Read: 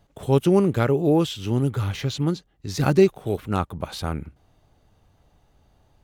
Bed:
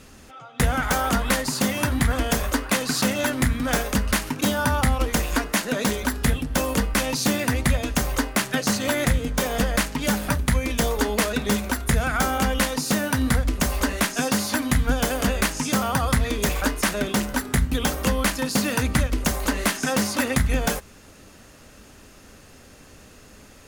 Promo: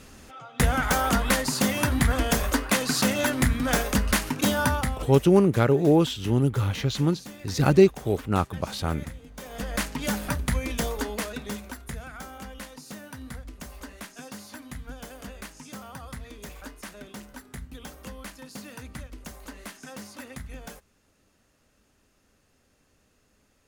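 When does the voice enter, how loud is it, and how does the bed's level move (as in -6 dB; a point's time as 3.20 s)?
4.80 s, 0.0 dB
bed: 4.66 s -1 dB
5.31 s -20.5 dB
9.31 s -20.5 dB
9.82 s -5 dB
10.75 s -5 dB
12.25 s -18.5 dB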